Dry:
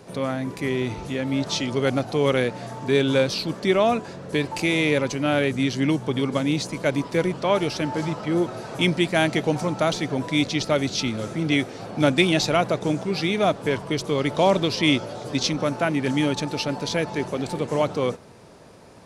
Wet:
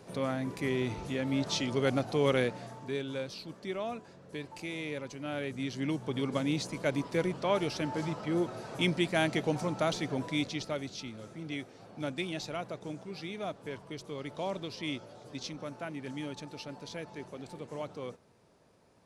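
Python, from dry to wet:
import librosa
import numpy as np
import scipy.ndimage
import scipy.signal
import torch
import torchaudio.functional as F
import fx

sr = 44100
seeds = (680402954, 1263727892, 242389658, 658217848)

y = fx.gain(x, sr, db=fx.line((2.45, -6.5), (3.05, -17.0), (5.07, -17.0), (6.34, -8.0), (10.19, -8.0), (11.03, -17.0)))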